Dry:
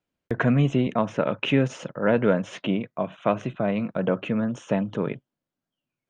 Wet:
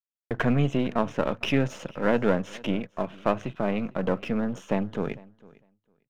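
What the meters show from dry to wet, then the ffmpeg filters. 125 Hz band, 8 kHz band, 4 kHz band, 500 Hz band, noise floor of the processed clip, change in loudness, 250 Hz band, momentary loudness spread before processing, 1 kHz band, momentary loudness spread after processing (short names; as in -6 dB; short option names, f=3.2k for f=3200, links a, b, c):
-3.5 dB, n/a, -2.0 dB, -2.5 dB, under -85 dBFS, -2.5 dB, -2.5 dB, 7 LU, -1.0 dB, 7 LU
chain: -af "aeval=exprs='if(lt(val(0),0),0.447*val(0),val(0))':c=same,agate=range=-33dB:threshold=-44dB:ratio=3:detection=peak,aecho=1:1:453|906:0.0708|0.0106"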